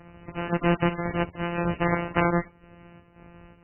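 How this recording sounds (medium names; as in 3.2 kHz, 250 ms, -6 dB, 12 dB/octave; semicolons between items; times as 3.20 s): a buzz of ramps at a fixed pitch in blocks of 256 samples; chopped level 1.9 Hz, depth 60%, duty 70%; MP3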